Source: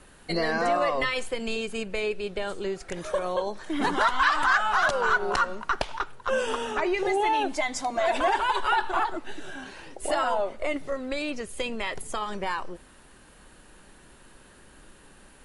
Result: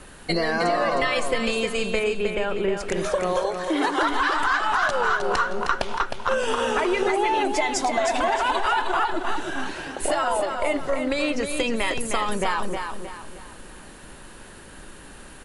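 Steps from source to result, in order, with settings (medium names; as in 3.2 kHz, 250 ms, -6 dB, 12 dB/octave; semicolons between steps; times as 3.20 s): 3.43–4.03 s: steep high-pass 280 Hz 72 dB/octave; compression, threshold -28 dBFS, peak gain reduction 10.5 dB; 1.99–2.77 s: Savitzky-Golay filter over 25 samples; feedback delay 311 ms, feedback 38%, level -6 dB; trim +8 dB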